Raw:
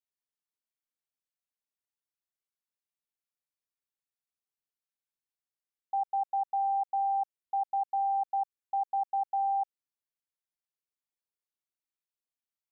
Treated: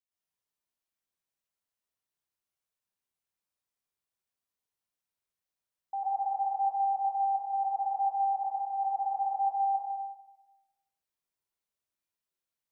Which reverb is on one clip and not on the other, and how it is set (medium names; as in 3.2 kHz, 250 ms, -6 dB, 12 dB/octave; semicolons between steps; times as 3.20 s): plate-style reverb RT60 1.1 s, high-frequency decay 0.6×, pre-delay 100 ms, DRR -7.5 dB; trim -4.5 dB